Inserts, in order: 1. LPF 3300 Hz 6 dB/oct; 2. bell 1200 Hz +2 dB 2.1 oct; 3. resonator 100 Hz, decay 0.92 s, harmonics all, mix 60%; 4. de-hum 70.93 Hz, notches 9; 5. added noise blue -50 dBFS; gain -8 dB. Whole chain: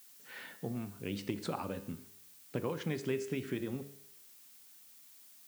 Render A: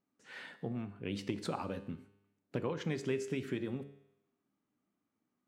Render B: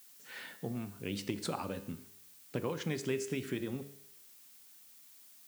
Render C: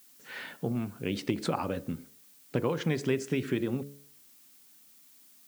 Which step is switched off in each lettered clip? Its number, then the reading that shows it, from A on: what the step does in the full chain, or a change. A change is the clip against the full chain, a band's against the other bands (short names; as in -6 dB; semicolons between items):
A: 5, 8 kHz band -3.0 dB; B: 1, 8 kHz band +4.5 dB; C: 3, 8 kHz band -2.0 dB